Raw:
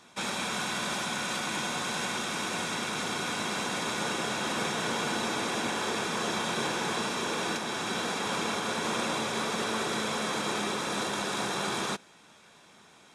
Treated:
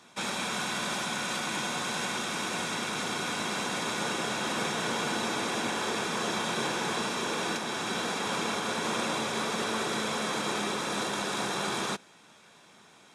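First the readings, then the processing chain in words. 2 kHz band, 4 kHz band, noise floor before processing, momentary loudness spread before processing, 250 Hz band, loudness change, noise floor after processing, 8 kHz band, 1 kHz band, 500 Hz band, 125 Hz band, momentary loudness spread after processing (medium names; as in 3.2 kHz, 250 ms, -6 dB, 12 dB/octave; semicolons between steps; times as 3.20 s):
0.0 dB, 0.0 dB, -57 dBFS, 2 LU, 0.0 dB, 0.0 dB, -57 dBFS, 0.0 dB, 0.0 dB, 0.0 dB, -0.5 dB, 2 LU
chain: high-pass 78 Hz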